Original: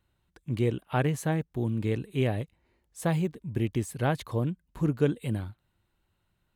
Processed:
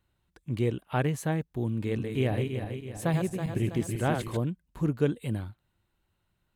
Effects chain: 1.67–4.37 s: backward echo that repeats 163 ms, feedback 68%, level -5 dB; trim -1 dB

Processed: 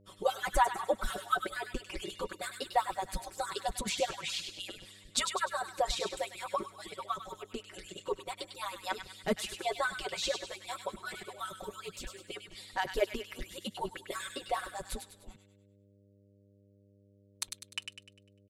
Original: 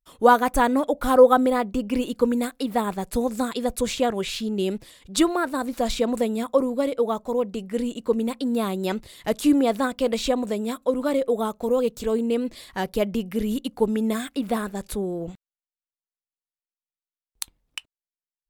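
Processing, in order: harmonic-percussive separation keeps percussive; low-pass 9.8 kHz 12 dB/octave; comb 5.3 ms, depth 87%; mains buzz 100 Hz, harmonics 6, -57 dBFS -4 dB/octave; feedback echo behind a high-pass 100 ms, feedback 44%, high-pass 1.6 kHz, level -6 dB; trim -6.5 dB

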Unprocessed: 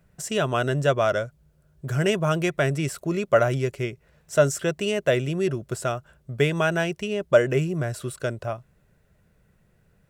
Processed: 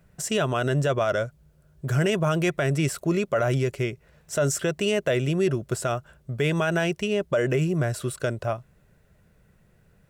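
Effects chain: peak limiter -17 dBFS, peak gain reduction 11.5 dB; trim +2.5 dB

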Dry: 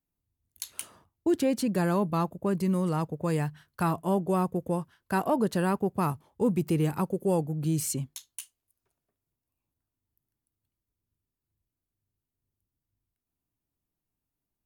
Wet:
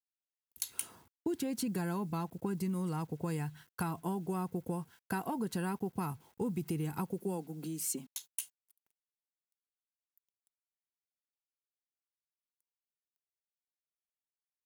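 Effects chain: dynamic bell 510 Hz, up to -4 dB, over -36 dBFS, Q 1.3; compression 6:1, threshold -32 dBFS, peak gain reduction 9.5 dB; 7.22–8.27 s: elliptic high-pass 180 Hz, stop band 50 dB; bit crusher 11-bit; treble shelf 9 kHz +6.5 dB; comb of notches 600 Hz

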